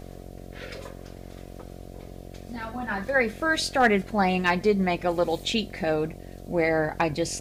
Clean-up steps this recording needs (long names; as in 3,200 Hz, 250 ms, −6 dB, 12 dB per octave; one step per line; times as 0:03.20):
clipped peaks rebuilt −11 dBFS
hum removal 45.3 Hz, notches 16